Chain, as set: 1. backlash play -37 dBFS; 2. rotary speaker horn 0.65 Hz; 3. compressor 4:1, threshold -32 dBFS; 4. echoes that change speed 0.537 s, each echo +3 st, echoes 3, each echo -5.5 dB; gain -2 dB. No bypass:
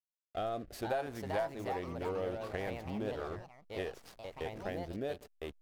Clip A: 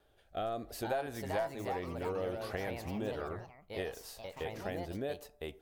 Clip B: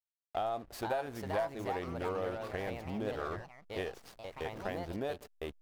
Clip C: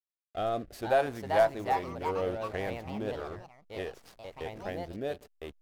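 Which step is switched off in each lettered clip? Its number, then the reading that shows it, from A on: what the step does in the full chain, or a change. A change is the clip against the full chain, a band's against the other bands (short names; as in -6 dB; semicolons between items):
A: 1, distortion -17 dB; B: 2, momentary loudness spread change -1 LU; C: 3, mean gain reduction 2.5 dB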